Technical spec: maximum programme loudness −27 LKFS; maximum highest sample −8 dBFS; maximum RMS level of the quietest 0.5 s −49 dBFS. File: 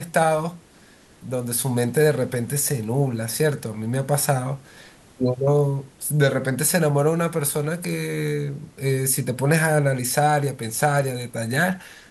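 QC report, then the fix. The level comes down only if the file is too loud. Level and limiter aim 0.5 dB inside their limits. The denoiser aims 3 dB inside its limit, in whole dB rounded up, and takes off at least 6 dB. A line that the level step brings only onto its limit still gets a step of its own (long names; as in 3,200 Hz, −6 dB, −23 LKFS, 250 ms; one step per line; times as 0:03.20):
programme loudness −22.5 LKFS: out of spec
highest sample −5.0 dBFS: out of spec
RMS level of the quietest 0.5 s −51 dBFS: in spec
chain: level −5 dB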